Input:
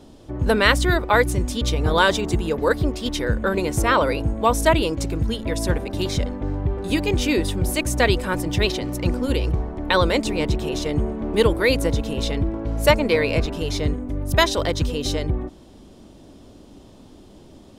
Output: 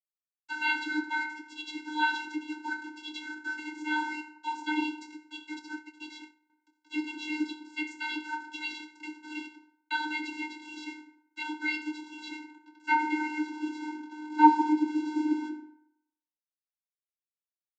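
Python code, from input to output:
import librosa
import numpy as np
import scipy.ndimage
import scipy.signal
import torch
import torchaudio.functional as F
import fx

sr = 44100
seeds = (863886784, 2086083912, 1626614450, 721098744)

y = fx.filter_sweep_bandpass(x, sr, from_hz=2700.0, to_hz=460.0, start_s=11.92, end_s=15.67, q=1.4)
y = fx.quant_dither(y, sr, seeds[0], bits=6, dither='none')
y = fx.rev_fdn(y, sr, rt60_s=0.79, lf_ratio=0.8, hf_ratio=0.55, size_ms=52.0, drr_db=-0.5)
y = fx.vocoder(y, sr, bands=32, carrier='square', carrier_hz=305.0)
y = fx.upward_expand(y, sr, threshold_db=-55.0, expansion=1.5, at=(5.59, 6.5))
y = y * 10.0 ** (-3.0 / 20.0)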